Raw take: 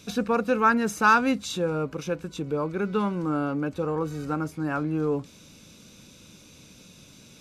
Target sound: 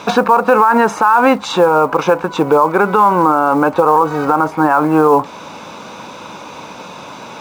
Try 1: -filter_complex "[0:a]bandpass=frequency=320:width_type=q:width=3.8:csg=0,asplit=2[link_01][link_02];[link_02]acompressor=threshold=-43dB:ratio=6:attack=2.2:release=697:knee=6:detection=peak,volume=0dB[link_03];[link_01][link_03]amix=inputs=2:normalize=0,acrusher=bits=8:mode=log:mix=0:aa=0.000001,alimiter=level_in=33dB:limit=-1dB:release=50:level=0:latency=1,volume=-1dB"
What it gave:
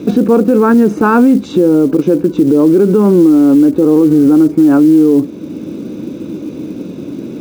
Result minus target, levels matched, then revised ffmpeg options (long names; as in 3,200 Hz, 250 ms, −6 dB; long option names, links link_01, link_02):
1,000 Hz band −14.0 dB
-filter_complex "[0:a]bandpass=frequency=920:width_type=q:width=3.8:csg=0,asplit=2[link_01][link_02];[link_02]acompressor=threshold=-43dB:ratio=6:attack=2.2:release=697:knee=6:detection=peak,volume=0dB[link_03];[link_01][link_03]amix=inputs=2:normalize=0,acrusher=bits=8:mode=log:mix=0:aa=0.000001,alimiter=level_in=33dB:limit=-1dB:release=50:level=0:latency=1,volume=-1dB"